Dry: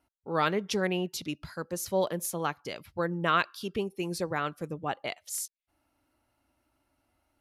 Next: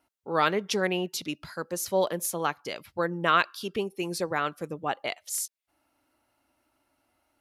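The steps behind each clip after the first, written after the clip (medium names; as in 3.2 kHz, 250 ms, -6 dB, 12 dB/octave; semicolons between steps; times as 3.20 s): bass shelf 150 Hz -11.5 dB; trim +3.5 dB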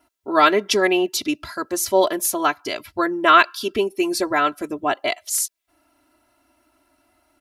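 comb 3 ms, depth 92%; trim +6.5 dB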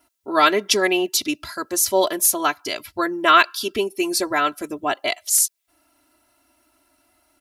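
treble shelf 3.4 kHz +8 dB; trim -2 dB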